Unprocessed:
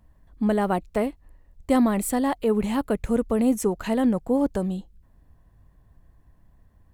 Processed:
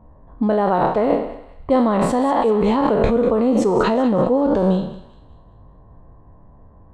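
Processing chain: spectral sustain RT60 0.60 s; level-controlled noise filter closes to 1.1 kHz, open at -21.5 dBFS; ten-band graphic EQ 125 Hz +4 dB, 250 Hz +4 dB, 500 Hz +9 dB, 1 kHz +11 dB, 4 kHz +12 dB, 8 kHz +4 dB; in parallel at +3 dB: compressor with a negative ratio -19 dBFS, ratio -0.5; on the sum: tape spacing loss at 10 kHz 23 dB; on a send: thinning echo 194 ms, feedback 43%, high-pass 1.1 kHz, level -12.5 dB; on the sum: trim -6 dB

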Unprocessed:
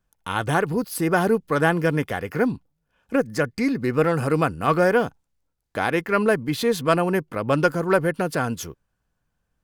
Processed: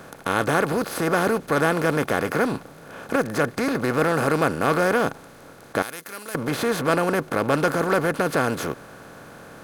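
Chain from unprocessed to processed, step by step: spectral levelling over time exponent 0.4; 5.82–6.35 s: pre-emphasis filter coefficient 0.9; trim -6 dB

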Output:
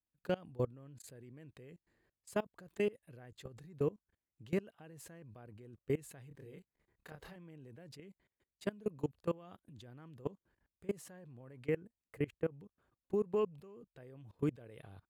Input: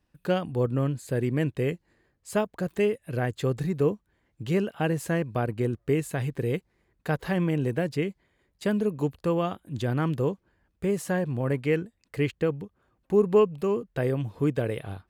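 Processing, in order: 11.69–12.52 s: peaking EQ 4.3 kHz -11.5 dB 1.3 oct; level held to a coarse grid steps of 23 dB; 6.28–7.36 s: doubling 28 ms -3 dB; trim -7.5 dB

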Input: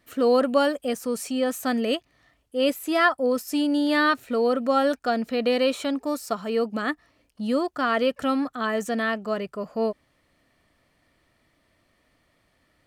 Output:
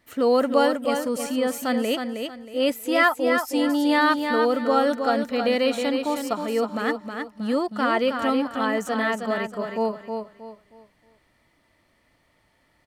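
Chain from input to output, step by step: small resonant body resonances 890/2000 Hz, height 9 dB; on a send: feedback delay 316 ms, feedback 31%, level -6 dB

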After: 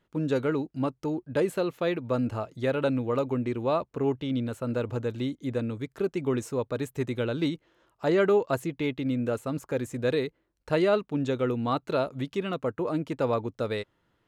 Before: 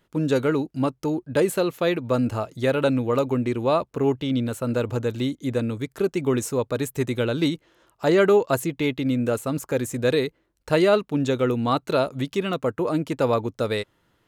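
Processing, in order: treble shelf 6.2 kHz -10.5 dB; trim -5 dB

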